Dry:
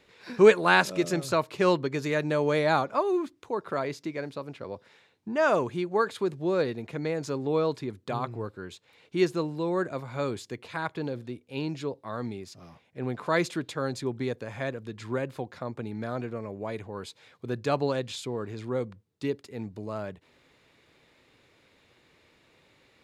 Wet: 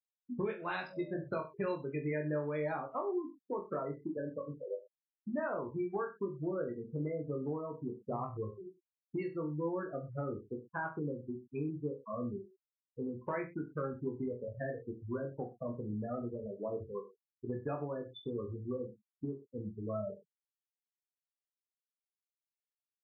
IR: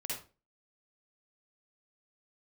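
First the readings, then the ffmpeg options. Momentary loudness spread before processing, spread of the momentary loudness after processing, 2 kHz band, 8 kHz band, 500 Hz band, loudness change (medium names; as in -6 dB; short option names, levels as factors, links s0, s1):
14 LU, 7 LU, -15.0 dB, under -35 dB, -10.5 dB, -10.5 dB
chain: -filter_complex "[0:a]afftfilt=real='re*gte(hypot(re,im),0.0708)':imag='im*gte(hypot(re,im),0.0708)':win_size=1024:overlap=0.75,afftdn=nr=33:nf=-49,acompressor=threshold=0.0251:ratio=16,asplit=2[s0][s1];[s1]aecho=0:1:20|42|66.2|92.82|122.1:0.631|0.398|0.251|0.158|0.1[s2];[s0][s2]amix=inputs=2:normalize=0,volume=0.75" -ar 12000 -c:a libmp3lame -b:a 24k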